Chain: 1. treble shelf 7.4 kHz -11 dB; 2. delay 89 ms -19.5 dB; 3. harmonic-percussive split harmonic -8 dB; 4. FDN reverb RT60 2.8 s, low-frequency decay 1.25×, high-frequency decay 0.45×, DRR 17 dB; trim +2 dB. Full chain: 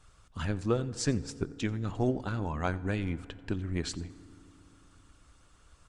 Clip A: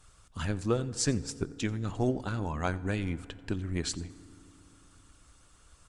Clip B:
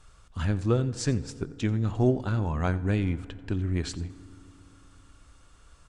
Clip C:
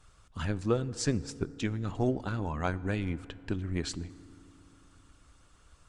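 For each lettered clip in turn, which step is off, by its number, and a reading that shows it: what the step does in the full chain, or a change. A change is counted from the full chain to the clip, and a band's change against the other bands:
1, 8 kHz band +5.0 dB; 3, 125 Hz band +5.5 dB; 2, momentary loudness spread change +2 LU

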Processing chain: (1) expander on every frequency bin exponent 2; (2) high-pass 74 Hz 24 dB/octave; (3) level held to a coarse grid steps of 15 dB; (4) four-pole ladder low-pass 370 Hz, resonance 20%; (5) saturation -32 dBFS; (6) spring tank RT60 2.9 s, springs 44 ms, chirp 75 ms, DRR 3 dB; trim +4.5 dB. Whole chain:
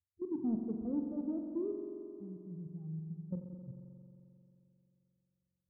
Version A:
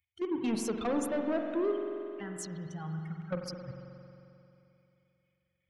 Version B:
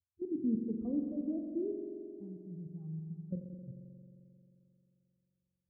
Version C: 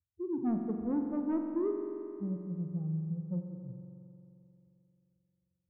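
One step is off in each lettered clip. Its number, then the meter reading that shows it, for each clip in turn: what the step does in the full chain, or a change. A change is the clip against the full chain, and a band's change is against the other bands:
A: 4, 1 kHz band +15.0 dB; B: 5, distortion -21 dB; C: 3, crest factor change -2.5 dB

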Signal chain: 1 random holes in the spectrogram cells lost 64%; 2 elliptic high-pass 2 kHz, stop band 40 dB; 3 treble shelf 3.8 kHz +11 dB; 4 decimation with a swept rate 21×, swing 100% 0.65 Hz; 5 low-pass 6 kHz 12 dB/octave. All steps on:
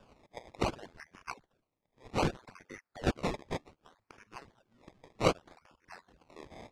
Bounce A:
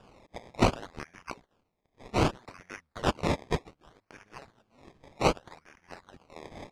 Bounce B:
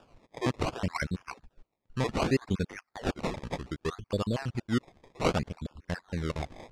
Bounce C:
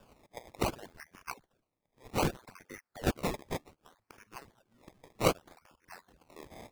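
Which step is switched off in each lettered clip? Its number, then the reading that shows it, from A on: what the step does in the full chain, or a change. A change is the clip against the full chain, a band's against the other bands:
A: 1, crest factor change -3.5 dB; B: 2, crest factor change -7.0 dB; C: 5, 8 kHz band +5.0 dB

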